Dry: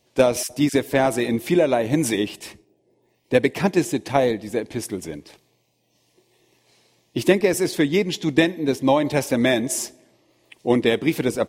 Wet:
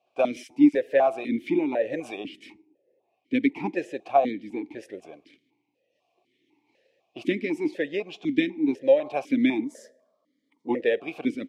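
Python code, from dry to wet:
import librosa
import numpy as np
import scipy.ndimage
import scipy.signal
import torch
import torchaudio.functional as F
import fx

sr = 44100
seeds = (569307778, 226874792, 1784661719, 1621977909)

y = fx.fixed_phaser(x, sr, hz=520.0, stages=8, at=(9.64, 10.69))
y = fx.vowel_held(y, sr, hz=4.0)
y = y * librosa.db_to_amplitude(4.5)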